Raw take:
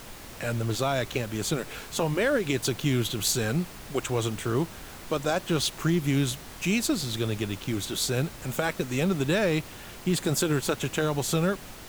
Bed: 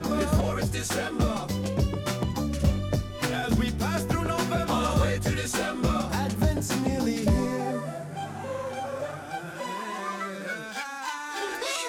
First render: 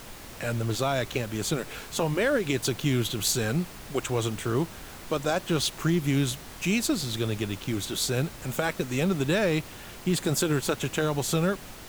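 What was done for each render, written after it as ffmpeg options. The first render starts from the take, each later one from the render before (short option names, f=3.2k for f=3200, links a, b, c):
-af anull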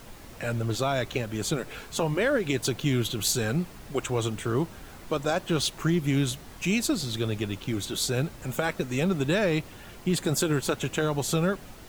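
-af "afftdn=nr=6:nf=-44"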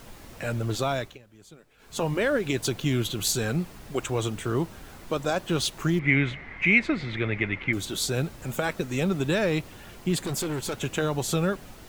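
-filter_complex "[0:a]asettb=1/sr,asplit=3[a][b][c];[a]atrim=end=5.994[d];[b]atrim=start=5.99:end=7.73,asetpts=PTS-STARTPTS,afade=t=in:d=0.004:c=qsin,afade=t=out:st=1.736:d=0.004:c=qsin,lowpass=f=2.1k:t=q:w=11[e];[c]atrim=start=7.726[f];[d][e]acrossfade=d=0.004:c1=hsin:c2=qsin[g];[g][f]acrossfade=d=0.004:c1=qsin:c2=hsin,asettb=1/sr,asplit=3[h][i][j];[h]atrim=end=10.184[k];[i]atrim=start=10.18:end=10.81,asetpts=PTS-STARTPTS,afade=t=in:d=0.004:c=qsin,afade=t=out:st=0.626:d=0.004:c=qsin,asoftclip=type=hard:threshold=-26.5dB[l];[j]atrim=start=10.806[m];[k][l]acrossfade=d=0.004:c1=hsin:c2=qsin[n];[n][m]acrossfade=d=0.004:c1=qsin:c2=hsin,asplit=3[o][p][q];[o]atrim=end=1.18,asetpts=PTS-STARTPTS,afade=t=out:st=0.92:d=0.26:silence=0.0794328[r];[p]atrim=start=1.18:end=1.78,asetpts=PTS-STARTPTS,volume=-22dB[s];[q]atrim=start=1.78,asetpts=PTS-STARTPTS,afade=t=in:d=0.26:silence=0.0794328[t];[r][s][t]concat=n=3:v=0:a=1"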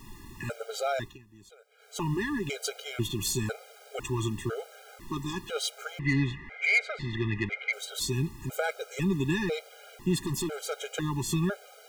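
-af "asoftclip=type=tanh:threshold=-15dB,afftfilt=real='re*gt(sin(2*PI*1*pts/sr)*(1-2*mod(floor(b*sr/1024/410),2)),0)':imag='im*gt(sin(2*PI*1*pts/sr)*(1-2*mod(floor(b*sr/1024/410),2)),0)':win_size=1024:overlap=0.75"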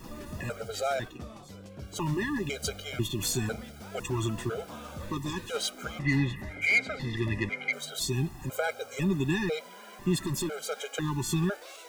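-filter_complex "[1:a]volume=-18dB[a];[0:a][a]amix=inputs=2:normalize=0"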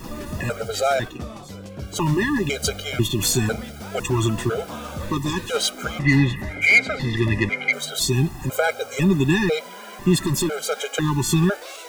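-af "volume=9.5dB"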